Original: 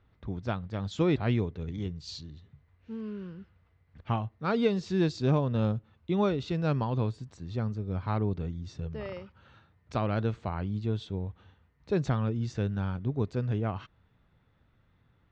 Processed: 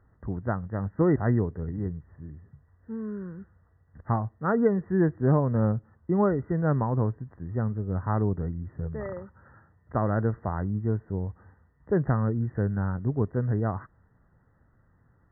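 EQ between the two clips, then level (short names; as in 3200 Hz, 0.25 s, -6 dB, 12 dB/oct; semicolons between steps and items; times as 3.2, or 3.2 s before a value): brick-wall FIR low-pass 2000 Hz; +3.5 dB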